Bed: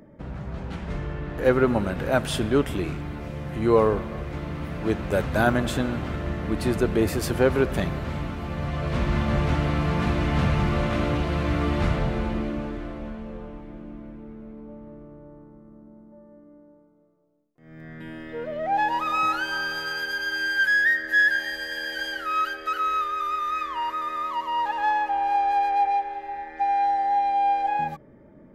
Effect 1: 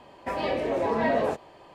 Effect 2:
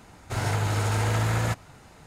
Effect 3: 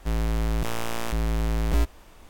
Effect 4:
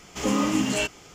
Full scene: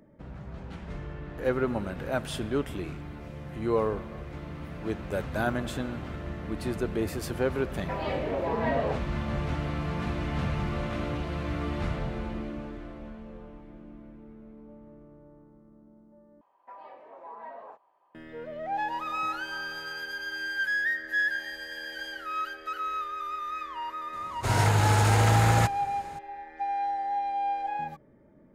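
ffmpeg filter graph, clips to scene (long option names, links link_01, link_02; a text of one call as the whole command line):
ffmpeg -i bed.wav -i cue0.wav -i cue1.wav -filter_complex "[1:a]asplit=2[link_01][link_02];[0:a]volume=-7.5dB[link_03];[link_01]lowpass=4200[link_04];[link_02]bandpass=frequency=1000:width_type=q:width=2.8:csg=0[link_05];[2:a]dynaudnorm=framelen=170:gausssize=3:maxgain=5.5dB[link_06];[link_03]asplit=2[link_07][link_08];[link_07]atrim=end=16.414[link_09];[link_05]atrim=end=1.74,asetpts=PTS-STARTPTS,volume=-11.5dB[link_10];[link_08]atrim=start=18.146[link_11];[link_04]atrim=end=1.74,asetpts=PTS-STARTPTS,volume=-3.5dB,afade=type=in:duration=0.004:curve=hsin,afade=type=out:start_time=1.736:duration=0.004:curve=hsin,adelay=336042S[link_12];[link_06]atrim=end=2.06,asetpts=PTS-STARTPTS,volume=-2.5dB,afade=type=in:duration=0.004:curve=hsin,afade=type=out:start_time=2.056:duration=0.004:curve=hsin,adelay=24130[link_13];[link_09][link_10]acrossfade=duration=0.004:curve1=hsin:curve2=hsin[link_14];[link_14][link_11]acrossfade=duration=0.004:curve1=hsin:curve2=hsin[link_15];[link_15][link_12][link_13]amix=inputs=3:normalize=0" out.wav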